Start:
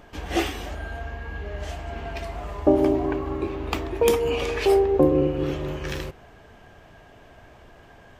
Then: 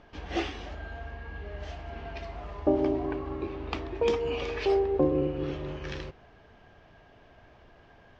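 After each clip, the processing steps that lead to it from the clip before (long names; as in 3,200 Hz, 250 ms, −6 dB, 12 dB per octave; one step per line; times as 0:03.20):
inverse Chebyshev low-pass filter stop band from 9,900 Hz, stop band 40 dB
level −6.5 dB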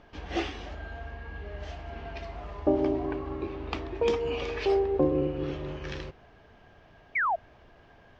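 sound drawn into the spectrogram fall, 0:07.15–0:07.36, 620–2,400 Hz −26 dBFS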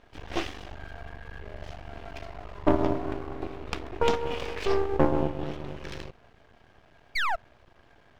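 harmonic generator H 7 −25 dB, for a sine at −12 dBFS
half-wave rectification
level +6 dB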